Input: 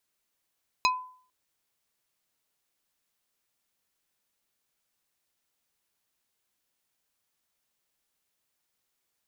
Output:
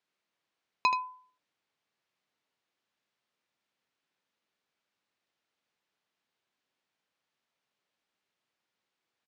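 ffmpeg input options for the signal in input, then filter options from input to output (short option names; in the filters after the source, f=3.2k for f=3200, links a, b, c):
-f lavfi -i "aevalsrc='0.112*pow(10,-3*t/0.5)*sin(2*PI*1010*t)+0.0891*pow(10,-3*t/0.167)*sin(2*PI*2525*t)+0.0708*pow(10,-3*t/0.095)*sin(2*PI*4040*t)+0.0562*pow(10,-3*t/0.072)*sin(2*PI*5050*t)+0.0447*pow(10,-3*t/0.053)*sin(2*PI*6565*t)':d=0.45:s=44100"
-filter_complex "[0:a]highpass=130,lowpass=3.8k,asplit=2[a][b];[b]aecho=0:1:78:0.398[c];[a][c]amix=inputs=2:normalize=0"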